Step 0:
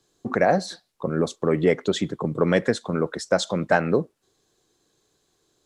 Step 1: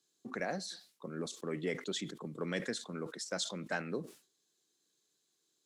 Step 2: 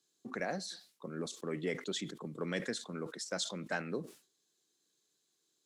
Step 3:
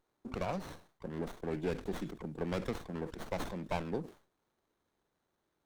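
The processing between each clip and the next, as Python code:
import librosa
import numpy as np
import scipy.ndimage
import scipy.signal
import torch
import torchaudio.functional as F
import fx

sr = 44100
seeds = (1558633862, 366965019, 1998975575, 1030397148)

y1 = scipy.signal.sosfilt(scipy.signal.bessel(4, 260.0, 'highpass', norm='mag', fs=sr, output='sos'), x)
y1 = fx.peak_eq(y1, sr, hz=700.0, db=-13.0, octaves=2.7)
y1 = fx.sustainer(y1, sr, db_per_s=140.0)
y1 = y1 * 10.0 ** (-6.5 / 20.0)
y2 = y1
y3 = fx.running_max(y2, sr, window=17)
y3 = y3 * 10.0 ** (1.5 / 20.0)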